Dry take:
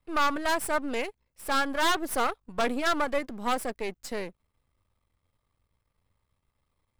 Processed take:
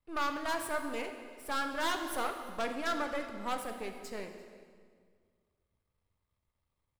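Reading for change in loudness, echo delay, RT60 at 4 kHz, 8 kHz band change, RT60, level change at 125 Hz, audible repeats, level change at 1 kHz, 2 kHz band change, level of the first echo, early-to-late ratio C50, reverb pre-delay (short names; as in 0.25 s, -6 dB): -7.0 dB, 0.344 s, 1.5 s, -7.5 dB, 1.9 s, -7.0 dB, 1, -7.0 dB, -7.0 dB, -22.5 dB, 6.5 dB, 5 ms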